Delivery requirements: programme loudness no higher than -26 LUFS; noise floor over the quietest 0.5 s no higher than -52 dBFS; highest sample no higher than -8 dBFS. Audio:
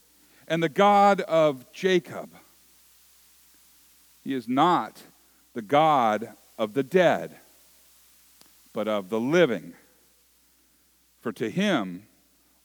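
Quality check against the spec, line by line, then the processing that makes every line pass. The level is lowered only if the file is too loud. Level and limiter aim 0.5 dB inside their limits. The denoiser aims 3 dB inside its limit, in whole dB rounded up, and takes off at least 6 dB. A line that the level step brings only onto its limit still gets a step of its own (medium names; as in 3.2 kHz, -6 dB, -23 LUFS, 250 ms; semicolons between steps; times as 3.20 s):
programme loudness -24.0 LUFS: fail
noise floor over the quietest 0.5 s -63 dBFS: pass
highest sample -6.5 dBFS: fail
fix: trim -2.5 dB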